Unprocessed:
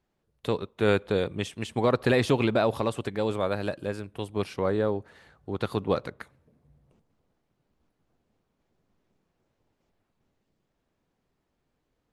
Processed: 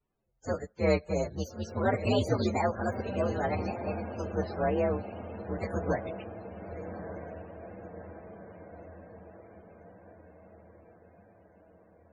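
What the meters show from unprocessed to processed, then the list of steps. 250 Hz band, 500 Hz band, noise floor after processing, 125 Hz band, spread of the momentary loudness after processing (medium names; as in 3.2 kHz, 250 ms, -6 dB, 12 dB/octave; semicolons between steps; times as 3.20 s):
-3.0 dB, -3.5 dB, -61 dBFS, -2.0 dB, 20 LU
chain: frequency axis rescaled in octaves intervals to 124%; echo that smears into a reverb 1196 ms, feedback 58%, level -9 dB; loudest bins only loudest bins 64; trim -1 dB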